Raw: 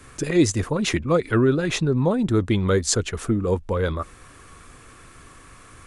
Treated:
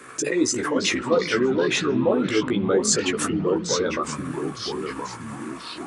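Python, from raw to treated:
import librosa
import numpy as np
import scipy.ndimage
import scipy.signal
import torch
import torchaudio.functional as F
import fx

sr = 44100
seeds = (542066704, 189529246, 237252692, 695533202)

p1 = fx.envelope_sharpen(x, sr, power=1.5)
p2 = scipy.signal.sosfilt(scipy.signal.butter(2, 380.0, 'highpass', fs=sr, output='sos'), p1)
p3 = fx.over_compress(p2, sr, threshold_db=-35.0, ratio=-1.0)
p4 = p2 + (p3 * 10.0 ** (-2.5 / 20.0))
p5 = fx.doubler(p4, sr, ms=16.0, db=-5.0)
p6 = fx.echo_pitch(p5, sr, ms=269, semitones=-3, count=3, db_per_echo=-6.0)
y = fx.rev_spring(p6, sr, rt60_s=4.0, pass_ms=(56,), chirp_ms=60, drr_db=18.5)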